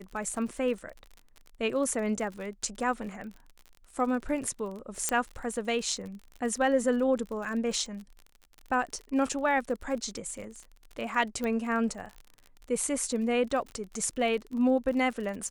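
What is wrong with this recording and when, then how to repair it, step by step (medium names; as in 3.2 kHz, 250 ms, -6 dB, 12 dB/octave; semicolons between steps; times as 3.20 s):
crackle 45 per s -37 dBFS
5.09 s: pop -11 dBFS
11.44 s: pop -20 dBFS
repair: de-click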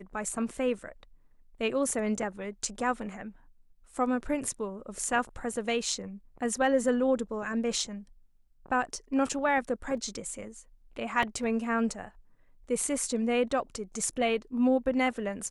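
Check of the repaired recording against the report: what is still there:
5.09 s: pop
11.44 s: pop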